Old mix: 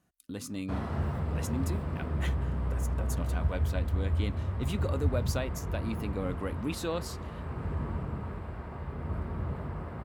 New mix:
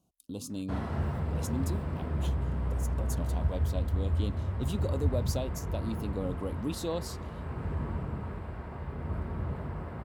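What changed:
speech: add Butterworth band-stop 1800 Hz, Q 0.91; master: add notch 1200 Hz, Q 19

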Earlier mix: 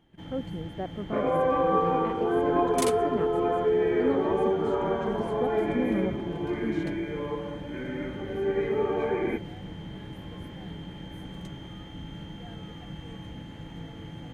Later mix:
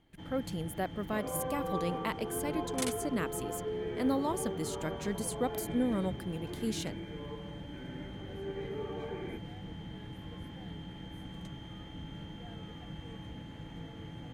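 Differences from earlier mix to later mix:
speech: remove band-pass 320 Hz, Q 0.57; second sound -9.5 dB; reverb: off

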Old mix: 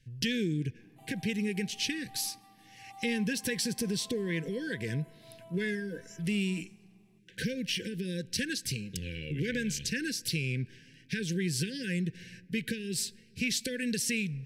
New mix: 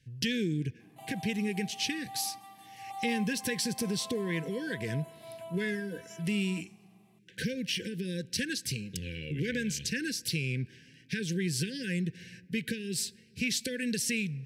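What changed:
background +9.0 dB; master: add HPF 52 Hz

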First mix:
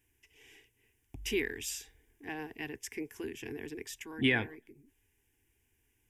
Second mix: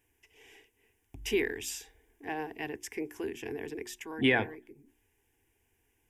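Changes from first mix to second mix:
speech: add bell 670 Hz +8.5 dB 1.7 oct; master: add notches 60/120/180/240/300/360 Hz

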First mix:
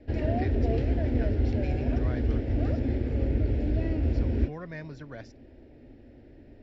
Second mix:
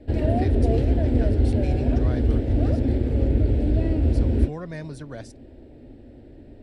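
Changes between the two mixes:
speech: remove LPF 4400 Hz 12 dB/oct; master: remove rippled Chebyshev low-pass 7300 Hz, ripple 6 dB

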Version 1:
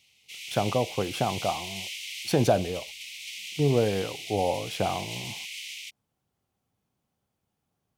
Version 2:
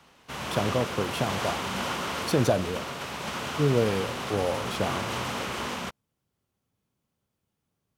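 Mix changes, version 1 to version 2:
speech: add bell 760 Hz -7 dB 0.32 oct; background: remove steep high-pass 2100 Hz 96 dB/oct

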